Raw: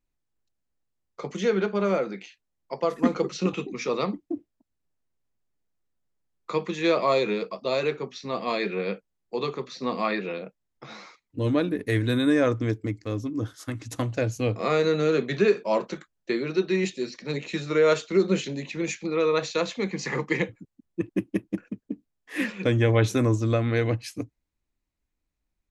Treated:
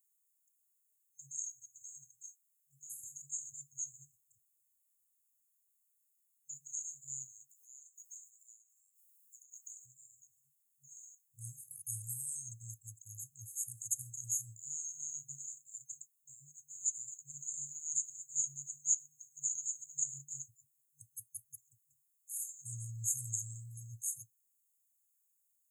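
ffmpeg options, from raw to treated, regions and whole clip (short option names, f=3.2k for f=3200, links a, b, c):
-filter_complex "[0:a]asettb=1/sr,asplit=3[a][b][c];[a]atrim=end=7.494[d];[b]atrim=start=7.49:end=9.86,asetpts=PTS-STARTPTS,afade=t=in:d=0.004:c=qsin,afade=t=out:st=2.366:d=0.004:c=qsin,highpass=f=1.4k:w=0.5412,highpass=f=1.4k:w=1.3066,highshelf=f=5.1k:g=10.5,acompressor=threshold=-45dB:ratio=12:attack=3.2:release=140:knee=1:detection=peak[e];[c]atrim=start=9.856[f];[d][e]acrossfade=d=0.004:c1=hsin:c2=qsin[g];[g][f]acrossfade=d=0.004:c1=qsin:c2=hsin,asettb=1/sr,asplit=3[h][i][j];[h]atrim=end=14.024[k];[i]atrim=start=14.02:end=15.67,asetpts=PTS-STARTPTS,afade=t=in:d=0.004:c=qsin,afade=t=out:st=1.646:d=0.004:c=qsin,highpass=f=150:p=1,asplit=2[l][m];[m]adelay=34,volume=-8.5dB[n];[l][n]amix=inputs=2:normalize=0,atrim=end_sample=72765[o];[j]atrim=start=15.666[p];[k][o]acrossfade=d=0.004:c1=hsin:c2=qsin[q];[q][p]acrossfade=d=0.004:c1=qsin:c2=hsin,afftfilt=real='re*(1-between(b*sr/4096,150,6400))':imag='im*(1-between(b*sr/4096,150,6400))':win_size=4096:overlap=0.75,acrossover=split=7000[r][s];[s]acompressor=threshold=-56dB:ratio=4:attack=1:release=60[t];[r][t]amix=inputs=2:normalize=0,aderivative,volume=14.5dB"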